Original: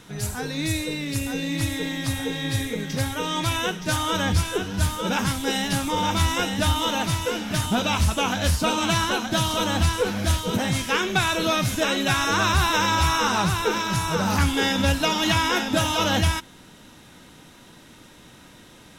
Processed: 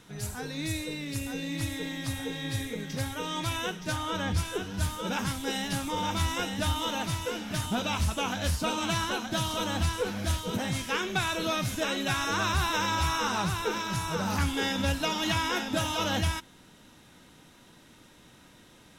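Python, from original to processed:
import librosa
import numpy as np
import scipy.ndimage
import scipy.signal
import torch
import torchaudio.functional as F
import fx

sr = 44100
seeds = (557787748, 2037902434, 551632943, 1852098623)

y = fx.high_shelf(x, sr, hz=fx.line((3.91, 4200.0), (4.36, 6100.0)), db=-7.5, at=(3.91, 4.36), fade=0.02)
y = F.gain(torch.from_numpy(y), -7.0).numpy()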